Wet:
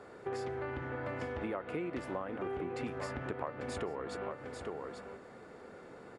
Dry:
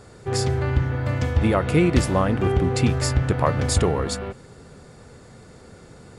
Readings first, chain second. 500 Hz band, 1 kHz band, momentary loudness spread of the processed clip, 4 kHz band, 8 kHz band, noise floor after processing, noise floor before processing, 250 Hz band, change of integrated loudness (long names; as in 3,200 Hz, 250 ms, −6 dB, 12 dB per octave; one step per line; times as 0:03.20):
−13.5 dB, −13.5 dB, 13 LU, −21.0 dB, −25.5 dB, −53 dBFS, −47 dBFS, −17.5 dB, −18.0 dB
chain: three-way crossover with the lows and the highs turned down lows −18 dB, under 240 Hz, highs −16 dB, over 2,700 Hz
on a send: single-tap delay 843 ms −13.5 dB
on the sum: downward compressor 6 to 1, threshold −34 dBFS, peak gain reduction 17.5 dB
level −2 dB